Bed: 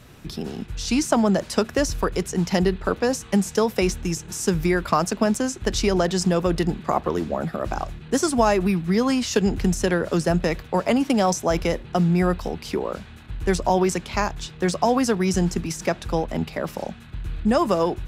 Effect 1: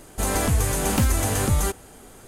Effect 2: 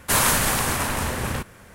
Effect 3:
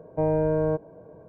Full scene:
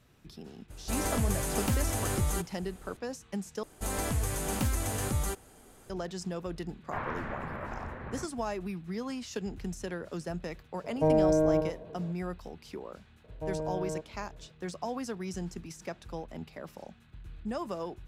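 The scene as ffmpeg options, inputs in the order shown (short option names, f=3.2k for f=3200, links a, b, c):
-filter_complex "[1:a]asplit=2[a][b];[3:a]asplit=2[c][d];[0:a]volume=-16dB[e];[2:a]lowpass=f=2k:w=0.5412,lowpass=f=2k:w=1.3066[f];[c]asplit=2[g][h];[h]adelay=93.29,volume=-7dB,highshelf=f=4k:g=-2.1[i];[g][i]amix=inputs=2:normalize=0[j];[e]asplit=2[k][l];[k]atrim=end=3.634[m];[b]atrim=end=2.27,asetpts=PTS-STARTPTS,volume=-9.5dB[n];[l]atrim=start=5.896[o];[a]atrim=end=2.27,asetpts=PTS-STARTPTS,volume=-8.5dB,afade=t=in:d=0.004:c=hsin,afade=t=out:st=2.266:d=0.004:c=hsin,adelay=700[p];[f]atrim=end=1.74,asetpts=PTS-STARTPTS,volume=-14dB,afade=t=in:d=0.004:c=hsin,afade=t=out:st=1.736:d=0.004:c=hsin,adelay=6830[q];[j]atrim=end=1.28,asetpts=PTS-STARTPTS,volume=-0.5dB,afade=t=in:d=0.004:c=hsin,afade=t=out:st=1.276:d=0.004:c=hsin,adelay=10840[r];[d]atrim=end=1.28,asetpts=PTS-STARTPTS,volume=-12dB,afade=t=in:d=0.004:c=hsin,afade=t=out:st=1.276:d=0.004:c=hsin,adelay=13240[s];[m][n]acrossfade=d=0.004:c1=hsin:c2=hsin[t];[t][o]acrossfade=d=0.004:c1=hsin:c2=hsin[u];[u][p][q][r][s]amix=inputs=5:normalize=0"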